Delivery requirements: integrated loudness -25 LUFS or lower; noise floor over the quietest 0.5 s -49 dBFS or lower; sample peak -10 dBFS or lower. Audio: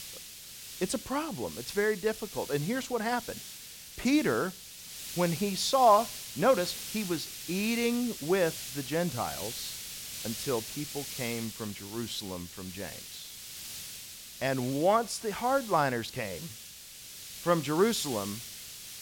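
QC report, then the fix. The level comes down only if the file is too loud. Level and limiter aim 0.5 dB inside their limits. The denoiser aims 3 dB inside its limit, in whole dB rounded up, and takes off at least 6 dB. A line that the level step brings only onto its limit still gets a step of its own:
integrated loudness -31.0 LUFS: OK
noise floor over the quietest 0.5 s -48 dBFS: fail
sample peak -11.0 dBFS: OK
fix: denoiser 6 dB, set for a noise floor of -48 dBFS

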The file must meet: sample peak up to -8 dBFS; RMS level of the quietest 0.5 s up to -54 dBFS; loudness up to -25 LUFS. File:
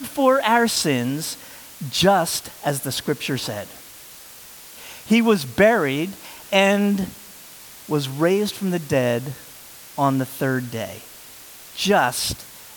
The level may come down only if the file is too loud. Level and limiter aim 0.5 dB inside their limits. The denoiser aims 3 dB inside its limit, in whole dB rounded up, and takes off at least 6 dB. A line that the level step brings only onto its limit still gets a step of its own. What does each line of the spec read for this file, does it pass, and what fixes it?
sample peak -3.0 dBFS: fail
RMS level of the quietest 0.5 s -42 dBFS: fail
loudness -21.0 LUFS: fail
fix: denoiser 11 dB, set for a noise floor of -42 dBFS; gain -4.5 dB; limiter -8.5 dBFS

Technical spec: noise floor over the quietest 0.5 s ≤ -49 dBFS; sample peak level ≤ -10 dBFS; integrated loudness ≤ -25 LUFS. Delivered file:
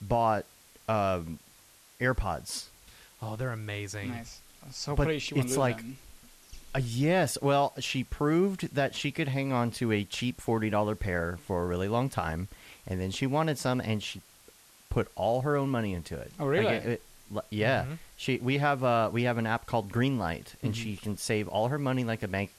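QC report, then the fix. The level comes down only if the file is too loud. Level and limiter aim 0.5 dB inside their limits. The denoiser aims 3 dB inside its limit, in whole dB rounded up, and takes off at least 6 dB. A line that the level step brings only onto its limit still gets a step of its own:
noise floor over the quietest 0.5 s -58 dBFS: OK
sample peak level -13.5 dBFS: OK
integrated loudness -30.5 LUFS: OK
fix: none

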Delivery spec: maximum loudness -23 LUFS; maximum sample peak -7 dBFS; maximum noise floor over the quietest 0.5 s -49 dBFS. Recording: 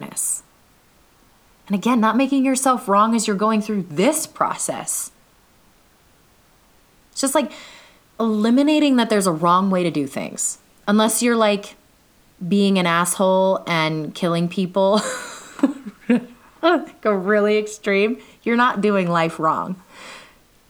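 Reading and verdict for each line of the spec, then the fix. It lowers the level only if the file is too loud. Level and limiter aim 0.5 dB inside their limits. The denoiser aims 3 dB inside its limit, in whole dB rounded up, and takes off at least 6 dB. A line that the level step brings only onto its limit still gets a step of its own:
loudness -19.5 LUFS: fail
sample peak -4.0 dBFS: fail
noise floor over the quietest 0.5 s -55 dBFS: OK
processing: gain -4 dB

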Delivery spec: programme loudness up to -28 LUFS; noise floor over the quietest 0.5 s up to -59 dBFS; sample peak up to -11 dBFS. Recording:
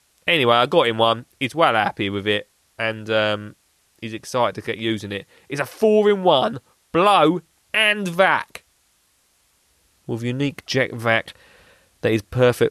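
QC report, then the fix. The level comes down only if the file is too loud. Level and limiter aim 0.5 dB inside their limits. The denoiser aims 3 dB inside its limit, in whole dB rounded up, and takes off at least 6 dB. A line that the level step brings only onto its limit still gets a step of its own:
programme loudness -19.5 LUFS: fail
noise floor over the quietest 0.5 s -63 dBFS: OK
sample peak -2.5 dBFS: fail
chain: gain -9 dB

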